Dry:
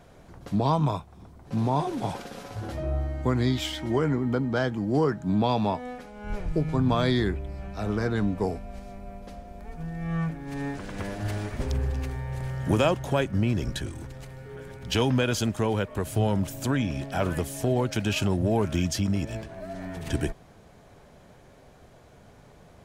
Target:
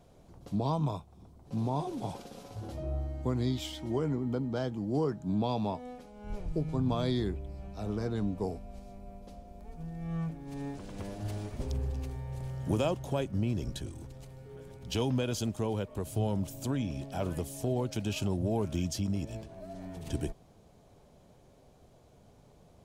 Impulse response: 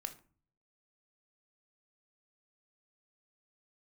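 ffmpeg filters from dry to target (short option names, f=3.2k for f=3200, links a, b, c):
-af "equalizer=f=1.7k:t=o:w=1.1:g=-10,volume=-6dB"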